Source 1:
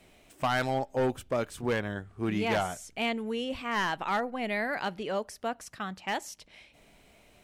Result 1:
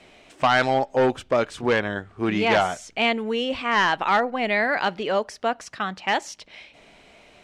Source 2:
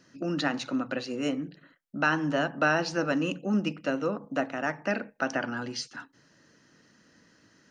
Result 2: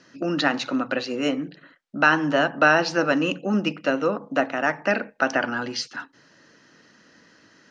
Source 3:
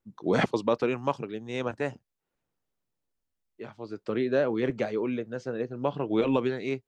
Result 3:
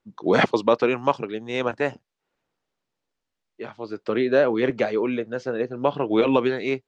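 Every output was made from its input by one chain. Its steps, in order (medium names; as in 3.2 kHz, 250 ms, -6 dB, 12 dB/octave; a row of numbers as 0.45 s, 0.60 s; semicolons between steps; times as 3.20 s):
low-pass 5.6 kHz 12 dB/octave; bass shelf 200 Hz -10 dB; normalise loudness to -23 LUFS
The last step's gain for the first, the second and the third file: +10.0 dB, +8.0 dB, +8.0 dB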